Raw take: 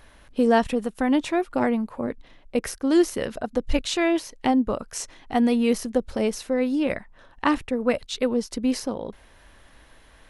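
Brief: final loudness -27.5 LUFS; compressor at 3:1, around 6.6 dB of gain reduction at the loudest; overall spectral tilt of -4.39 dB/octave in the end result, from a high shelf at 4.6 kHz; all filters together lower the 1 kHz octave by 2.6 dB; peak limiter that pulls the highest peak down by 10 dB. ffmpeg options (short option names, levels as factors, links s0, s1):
-af "equalizer=f=1000:t=o:g=-3.5,highshelf=f=4600:g=-6,acompressor=threshold=0.0631:ratio=3,volume=1.68,alimiter=limit=0.141:level=0:latency=1"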